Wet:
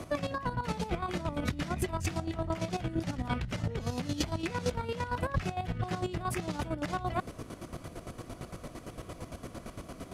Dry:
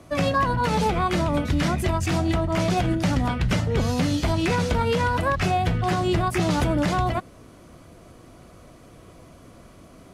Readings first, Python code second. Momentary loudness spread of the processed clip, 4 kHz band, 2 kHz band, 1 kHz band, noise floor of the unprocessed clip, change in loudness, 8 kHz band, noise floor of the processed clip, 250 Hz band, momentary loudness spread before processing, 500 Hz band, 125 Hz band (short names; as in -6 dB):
11 LU, -11.0 dB, -11.5 dB, -11.5 dB, -48 dBFS, -12.5 dB, -8.0 dB, -50 dBFS, -11.0 dB, 1 LU, -11.0 dB, -11.0 dB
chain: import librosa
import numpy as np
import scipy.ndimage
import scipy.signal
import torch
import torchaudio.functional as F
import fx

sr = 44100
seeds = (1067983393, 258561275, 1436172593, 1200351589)

y = fx.over_compress(x, sr, threshold_db=-30.0, ratio=-1.0)
y = fx.chopper(y, sr, hz=8.8, depth_pct=65, duty_pct=35)